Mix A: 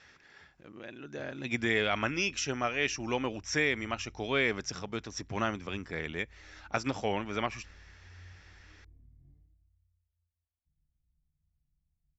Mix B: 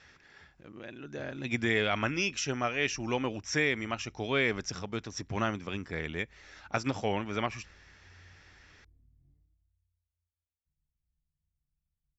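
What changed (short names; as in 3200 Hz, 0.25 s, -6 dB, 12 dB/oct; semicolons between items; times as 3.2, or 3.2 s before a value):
speech: add low shelf 140 Hz +5.5 dB; background -6.0 dB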